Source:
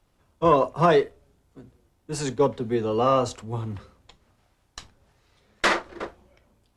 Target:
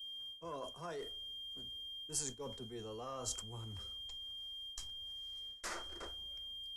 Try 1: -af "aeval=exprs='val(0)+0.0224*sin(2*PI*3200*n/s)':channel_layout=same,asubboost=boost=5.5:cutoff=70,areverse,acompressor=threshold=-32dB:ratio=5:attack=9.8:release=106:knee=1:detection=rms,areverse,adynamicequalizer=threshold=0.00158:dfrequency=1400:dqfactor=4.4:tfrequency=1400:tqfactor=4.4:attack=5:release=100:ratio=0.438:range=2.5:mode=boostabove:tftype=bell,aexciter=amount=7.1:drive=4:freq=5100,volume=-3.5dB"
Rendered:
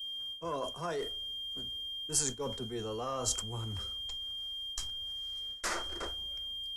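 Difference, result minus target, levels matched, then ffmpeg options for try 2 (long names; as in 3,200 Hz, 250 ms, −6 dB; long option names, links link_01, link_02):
downward compressor: peak gain reduction −8.5 dB
-af "aeval=exprs='val(0)+0.0224*sin(2*PI*3200*n/s)':channel_layout=same,asubboost=boost=5.5:cutoff=70,areverse,acompressor=threshold=-42.5dB:ratio=5:attack=9.8:release=106:knee=1:detection=rms,areverse,adynamicequalizer=threshold=0.00158:dfrequency=1400:dqfactor=4.4:tfrequency=1400:tqfactor=4.4:attack=5:release=100:ratio=0.438:range=2.5:mode=boostabove:tftype=bell,aexciter=amount=7.1:drive=4:freq=5100,volume=-3.5dB"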